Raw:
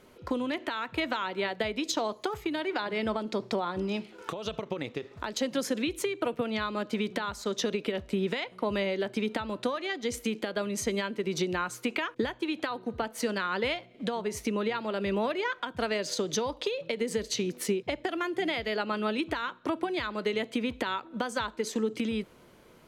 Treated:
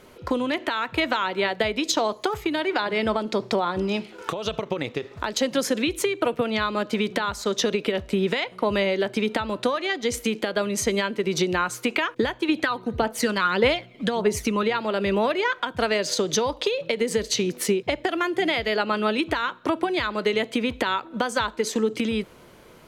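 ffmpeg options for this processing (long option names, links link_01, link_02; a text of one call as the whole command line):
ffmpeg -i in.wav -filter_complex "[0:a]asettb=1/sr,asplit=3[link_01][link_02][link_03];[link_01]atrim=end=12.494[link_04];[link_02]atrim=start=12.49:end=14.63,asetpts=PTS-STARTPTS,afade=type=in:duration=0.004:curve=qsin,afade=type=out:start_time=2.136:duration=0.004:curve=qsin,aphaser=in_gain=1:out_gain=1:delay=1:decay=0.45:speed=1.7:type=triangular[link_05];[link_03]atrim=start=14.626[link_06];[link_04][link_05]acrossfade=duration=0.004:curve1=hsin:curve2=qsin[link_07];[link_07][link_06]acrossfade=duration=0.004:curve1=qsin:curve2=hsin,equalizer=frequency=240:width_type=o:width=1.1:gain=-2.5,volume=7.5dB" out.wav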